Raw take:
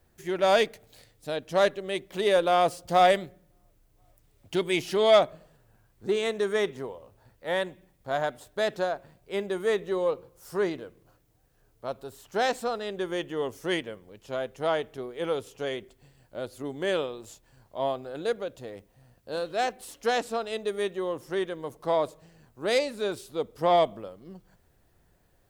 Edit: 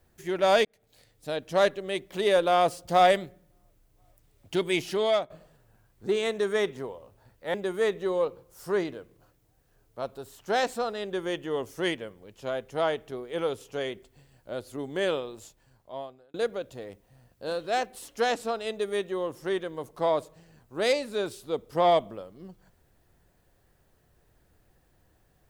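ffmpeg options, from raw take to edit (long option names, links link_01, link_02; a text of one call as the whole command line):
ffmpeg -i in.wav -filter_complex "[0:a]asplit=5[link_01][link_02][link_03][link_04][link_05];[link_01]atrim=end=0.65,asetpts=PTS-STARTPTS,afade=type=out:start_time=0.646:duration=0.004:curve=hsin[link_06];[link_02]atrim=start=0.65:end=5.3,asetpts=PTS-STARTPTS,afade=type=in:duration=0.65,afade=type=out:start_time=4.02:duration=0.63:curve=qsin:silence=0.158489[link_07];[link_03]atrim=start=5.3:end=7.542,asetpts=PTS-STARTPTS,afade=type=in:duration=0.004:curve=hsin:silence=0.158489[link_08];[link_04]atrim=start=9.398:end=18.2,asetpts=PTS-STARTPTS,afade=type=out:start_time=7.792:duration=1.01[link_09];[link_05]atrim=start=18.2,asetpts=PTS-STARTPTS,afade=type=in:duration=0.004:curve=hsin[link_10];[link_06][link_07][link_08]concat=n=3:v=0:a=1[link_11];[link_09][link_10]concat=n=2:v=0:a=1[link_12];[link_11][link_12]acrossfade=duration=0.004:curve1=hsin:curve2=hsin" out.wav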